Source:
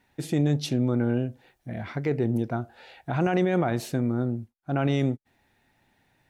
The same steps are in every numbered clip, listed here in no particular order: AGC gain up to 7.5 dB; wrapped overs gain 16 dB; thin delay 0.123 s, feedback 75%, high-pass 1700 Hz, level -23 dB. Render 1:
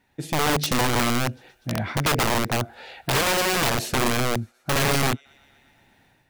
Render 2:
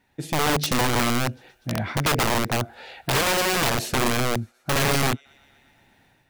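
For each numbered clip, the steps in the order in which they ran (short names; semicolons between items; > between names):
thin delay > AGC > wrapped overs; AGC > thin delay > wrapped overs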